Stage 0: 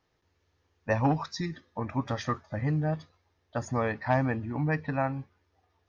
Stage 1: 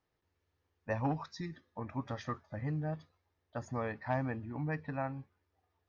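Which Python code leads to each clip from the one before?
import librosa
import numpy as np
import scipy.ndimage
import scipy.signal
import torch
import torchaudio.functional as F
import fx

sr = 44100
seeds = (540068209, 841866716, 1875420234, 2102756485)

y = fx.high_shelf(x, sr, hz=4700.0, db=-6.0)
y = y * 10.0 ** (-8.0 / 20.0)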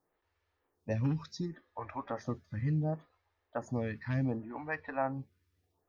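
y = fx.stagger_phaser(x, sr, hz=0.69)
y = y * 10.0 ** (5.5 / 20.0)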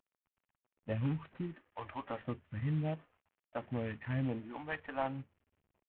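y = fx.cvsd(x, sr, bps=16000)
y = y * 10.0 ** (-2.5 / 20.0)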